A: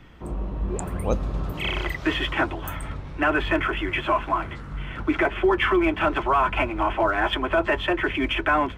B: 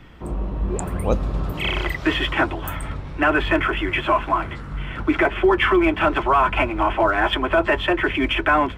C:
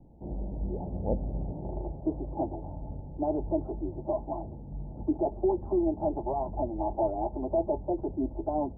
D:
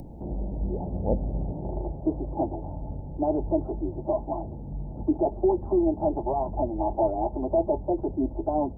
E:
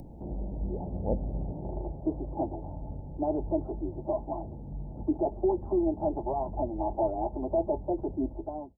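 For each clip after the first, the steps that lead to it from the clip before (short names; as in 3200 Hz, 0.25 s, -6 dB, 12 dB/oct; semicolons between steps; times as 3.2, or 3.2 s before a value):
notch 6300 Hz, Q 20; gain +3.5 dB
rippled Chebyshev low-pass 880 Hz, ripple 3 dB; gain -7 dB
upward compressor, threshold -36 dBFS; gain +4 dB
ending faded out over 0.54 s; gain -4 dB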